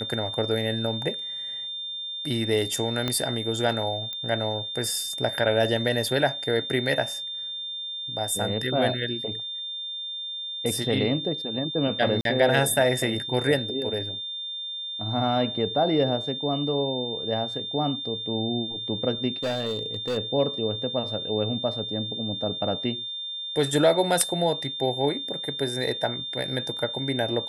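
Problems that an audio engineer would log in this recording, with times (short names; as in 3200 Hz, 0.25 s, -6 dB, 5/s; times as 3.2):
tone 3600 Hz -31 dBFS
3.08 pop -12 dBFS
4.13 pop -19 dBFS
12.21–12.25 gap 42 ms
19.43–20.18 clipped -23.5 dBFS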